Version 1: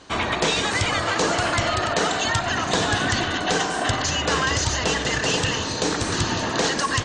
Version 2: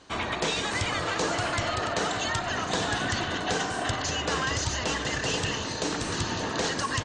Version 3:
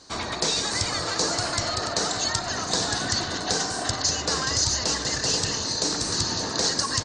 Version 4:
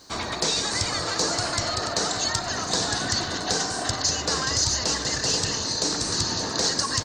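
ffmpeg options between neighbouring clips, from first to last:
ffmpeg -i in.wav -filter_complex "[0:a]asplit=2[link_01][link_02];[link_02]adelay=583.1,volume=-9dB,highshelf=frequency=4000:gain=-13.1[link_03];[link_01][link_03]amix=inputs=2:normalize=0,volume=-6.5dB" out.wav
ffmpeg -i in.wav -af "highshelf=frequency=3700:width_type=q:width=3:gain=6.5" out.wav
ffmpeg -i in.wav -af "acontrast=36,acrusher=bits=8:mix=0:aa=0.5,volume=-5dB" out.wav

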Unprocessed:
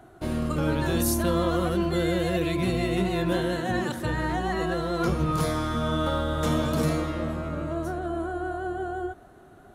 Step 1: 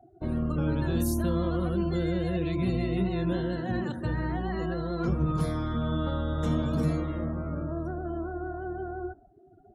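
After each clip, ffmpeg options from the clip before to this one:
ffmpeg -i in.wav -filter_complex "[0:a]afftdn=noise_reduction=30:noise_floor=-41,acrossover=split=320[link_01][link_02];[link_02]acompressor=threshold=-49dB:ratio=1.5[link_03];[link_01][link_03]amix=inputs=2:normalize=0" out.wav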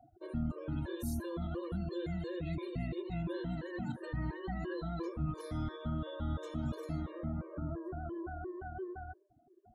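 ffmpeg -i in.wav -af "alimiter=limit=-21.5dB:level=0:latency=1:release=199,afftfilt=real='re*gt(sin(2*PI*2.9*pts/sr)*(1-2*mod(floor(b*sr/1024/310),2)),0)':imag='im*gt(sin(2*PI*2.9*pts/sr)*(1-2*mod(floor(b*sr/1024/310),2)),0)':win_size=1024:overlap=0.75,volume=-4dB" out.wav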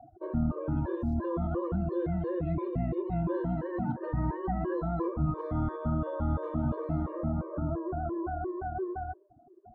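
ffmpeg -i in.wav -af "lowpass=frequency=1000:width_type=q:width=1.8,volume=6.5dB" out.wav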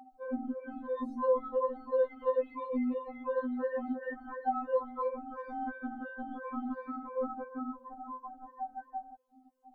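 ffmpeg -i in.wav -af "afftfilt=real='re*3.46*eq(mod(b,12),0)':imag='im*3.46*eq(mod(b,12),0)':win_size=2048:overlap=0.75,volume=3.5dB" out.wav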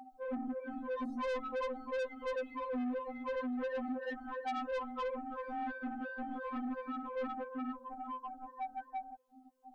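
ffmpeg -i in.wav -af "asoftclip=type=tanh:threshold=-35dB,volume=1.5dB" out.wav

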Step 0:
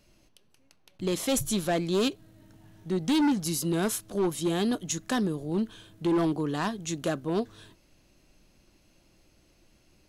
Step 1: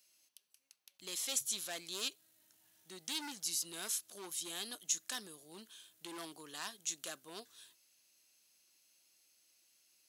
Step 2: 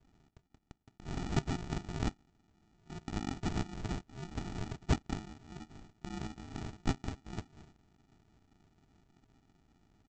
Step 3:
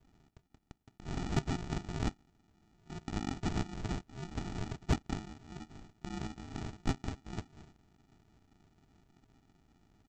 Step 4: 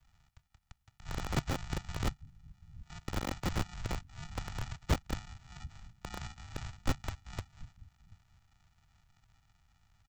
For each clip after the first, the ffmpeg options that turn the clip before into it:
ffmpeg -i in.wav -filter_complex "[0:a]aderivative,acrossover=split=7700[link_01][link_02];[link_02]acompressor=threshold=-44dB:ratio=4:attack=1:release=60[link_03];[link_01][link_03]amix=inputs=2:normalize=0,volume=1dB" out.wav
ffmpeg -i in.wav -af "equalizer=frequency=1400:width=1.6:gain=-8,aresample=16000,acrusher=samples=30:mix=1:aa=0.000001,aresample=44100,volume=7dB" out.wav
ffmpeg -i in.wav -af "asoftclip=type=tanh:threshold=-19.5dB,volume=1dB" out.wav
ffmpeg -i in.wav -filter_complex "[0:a]acrossover=split=140|790[link_01][link_02][link_03];[link_01]aecho=1:1:734:0.2[link_04];[link_02]acrusher=bits=3:dc=4:mix=0:aa=0.000001[link_05];[link_04][link_05][link_03]amix=inputs=3:normalize=0,volume=2dB" out.wav

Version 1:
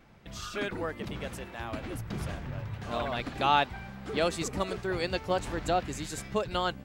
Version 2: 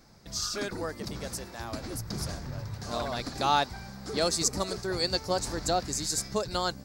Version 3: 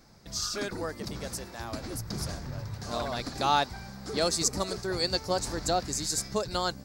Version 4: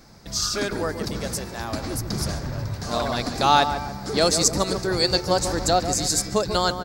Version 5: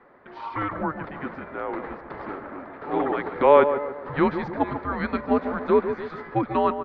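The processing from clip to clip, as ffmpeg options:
ffmpeg -i in.wav -af "highshelf=frequency=3800:width_type=q:width=3:gain=8.5" out.wav
ffmpeg -i in.wav -af anull out.wav
ffmpeg -i in.wav -filter_complex "[0:a]asplit=2[link_01][link_02];[link_02]adelay=143,lowpass=frequency=1400:poles=1,volume=-8dB,asplit=2[link_03][link_04];[link_04]adelay=143,lowpass=frequency=1400:poles=1,volume=0.5,asplit=2[link_05][link_06];[link_06]adelay=143,lowpass=frequency=1400:poles=1,volume=0.5,asplit=2[link_07][link_08];[link_08]adelay=143,lowpass=frequency=1400:poles=1,volume=0.5,asplit=2[link_09][link_10];[link_10]adelay=143,lowpass=frequency=1400:poles=1,volume=0.5,asplit=2[link_11][link_12];[link_12]adelay=143,lowpass=frequency=1400:poles=1,volume=0.5[link_13];[link_01][link_03][link_05][link_07][link_09][link_11][link_13]amix=inputs=7:normalize=0,volume=7.5dB" out.wav
ffmpeg -i in.wav -af "highpass=frequency=580:width_type=q:width=0.5412,highpass=frequency=580:width_type=q:width=1.307,lowpass=frequency=2400:width_type=q:width=0.5176,lowpass=frequency=2400:width_type=q:width=0.7071,lowpass=frequency=2400:width_type=q:width=1.932,afreqshift=-300,volume=3.5dB" out.wav

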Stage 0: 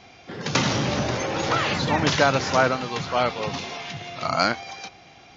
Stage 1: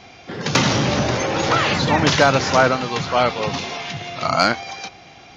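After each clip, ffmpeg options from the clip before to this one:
ffmpeg -i in.wav -af "acontrast=33" out.wav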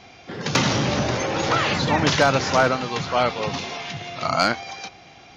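ffmpeg -i in.wav -af "asoftclip=type=hard:threshold=-5dB,volume=-3dB" out.wav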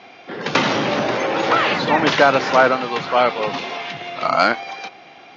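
ffmpeg -i in.wav -af "highpass=260,lowpass=3400,volume=5dB" out.wav

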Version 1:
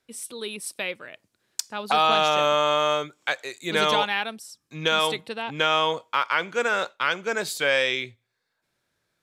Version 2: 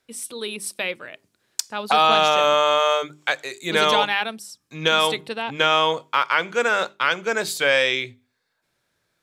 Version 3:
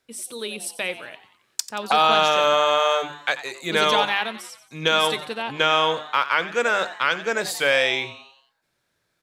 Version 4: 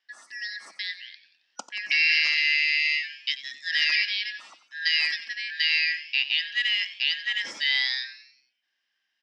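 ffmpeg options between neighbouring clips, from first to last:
ffmpeg -i in.wav -af "bandreject=frequency=50:width_type=h:width=6,bandreject=frequency=100:width_type=h:width=6,bandreject=frequency=150:width_type=h:width=6,bandreject=frequency=200:width_type=h:width=6,bandreject=frequency=250:width_type=h:width=6,bandreject=frequency=300:width_type=h:width=6,bandreject=frequency=350:width_type=h:width=6,bandreject=frequency=400:width_type=h:width=6,volume=3.5dB" out.wav
ffmpeg -i in.wav -filter_complex "[0:a]asplit=6[link_01][link_02][link_03][link_04][link_05][link_06];[link_02]adelay=90,afreqshift=140,volume=-14.5dB[link_07];[link_03]adelay=180,afreqshift=280,volume=-20.3dB[link_08];[link_04]adelay=270,afreqshift=420,volume=-26.2dB[link_09];[link_05]adelay=360,afreqshift=560,volume=-32dB[link_10];[link_06]adelay=450,afreqshift=700,volume=-37.9dB[link_11];[link_01][link_07][link_08][link_09][link_10][link_11]amix=inputs=6:normalize=0,volume=-1dB" out.wav
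ffmpeg -i in.wav -af "afftfilt=real='real(if(lt(b,272),68*(eq(floor(b/68),0)*3+eq(floor(b/68),1)*0+eq(floor(b/68),2)*1+eq(floor(b/68),3)*2)+mod(b,68),b),0)':imag='imag(if(lt(b,272),68*(eq(floor(b/68),0)*3+eq(floor(b/68),1)*0+eq(floor(b/68),2)*1+eq(floor(b/68),3)*2)+mod(b,68),b),0)':win_size=2048:overlap=0.75,highpass=frequency=220:width=0.5412,highpass=frequency=220:width=1.3066,equalizer=frequency=430:width_type=q:width=4:gain=-9,equalizer=frequency=1700:width_type=q:width=4:gain=8,equalizer=frequency=2800:width_type=q:width=4:gain=5,equalizer=frequency=5100:width_type=q:width=4:gain=6,lowpass=frequency=5800:width=0.5412,lowpass=frequency=5800:width=1.3066,volume=-8.5dB" out.wav

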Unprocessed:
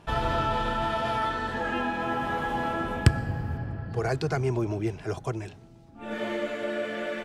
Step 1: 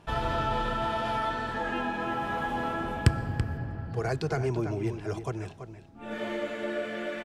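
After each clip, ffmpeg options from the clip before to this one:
ffmpeg -i in.wav -filter_complex "[0:a]asplit=2[link_01][link_02];[link_02]adelay=332.4,volume=-9dB,highshelf=frequency=4000:gain=-7.48[link_03];[link_01][link_03]amix=inputs=2:normalize=0,volume=-2.5dB" out.wav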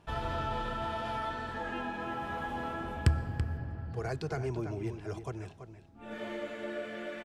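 ffmpeg -i in.wav -af "equalizer=frequency=76:width=5.8:gain=10.5,volume=-6dB" out.wav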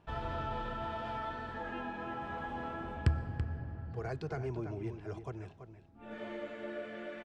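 ffmpeg -i in.wav -af "aemphasis=mode=reproduction:type=50fm,volume=-3.5dB" out.wav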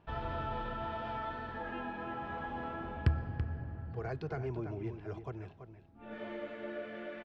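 ffmpeg -i in.wav -af "lowpass=4300" out.wav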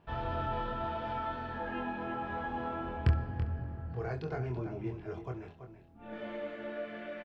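ffmpeg -i in.wav -af "aecho=1:1:24|68:0.668|0.168" out.wav

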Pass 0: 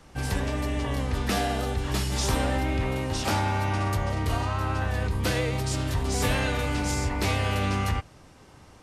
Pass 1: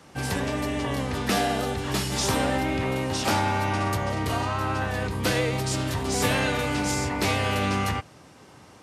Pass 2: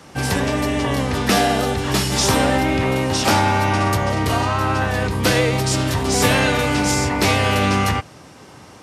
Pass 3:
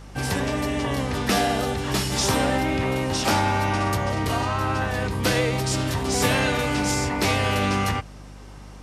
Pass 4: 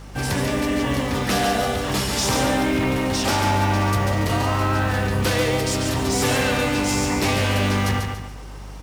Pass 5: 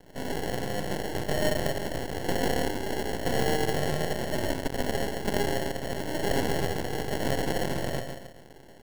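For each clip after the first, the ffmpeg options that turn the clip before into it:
ffmpeg -i in.wav -af "highpass=120,volume=3dB" out.wav
ffmpeg -i in.wav -af "equalizer=frequency=5500:width_type=o:width=0.23:gain=2,volume=7.5dB" out.wav
ffmpeg -i in.wav -af "aeval=exprs='val(0)+0.0158*(sin(2*PI*50*n/s)+sin(2*PI*2*50*n/s)/2+sin(2*PI*3*50*n/s)/3+sin(2*PI*4*50*n/s)/4+sin(2*PI*5*50*n/s)/5)':channel_layout=same,volume=-5dB" out.wav
ffmpeg -i in.wav -filter_complex "[0:a]asplit=2[link_01][link_02];[link_02]acrusher=bits=3:mode=log:mix=0:aa=0.000001,volume=-3.5dB[link_03];[link_01][link_03]amix=inputs=2:normalize=0,asoftclip=type=tanh:threshold=-14.5dB,aecho=1:1:142|284|426|568:0.562|0.202|0.0729|0.0262,volume=-1.5dB" out.wav
ffmpeg -i in.wav -af "highpass=frequency=490:width_type=q:width=0.5412,highpass=frequency=490:width_type=q:width=1.307,lowpass=frequency=2900:width_type=q:width=0.5176,lowpass=frequency=2900:width_type=q:width=0.7071,lowpass=frequency=2900:width_type=q:width=1.932,afreqshift=-91,acrusher=samples=36:mix=1:aa=0.000001,aeval=exprs='max(val(0),0)':channel_layout=same,volume=1dB" out.wav

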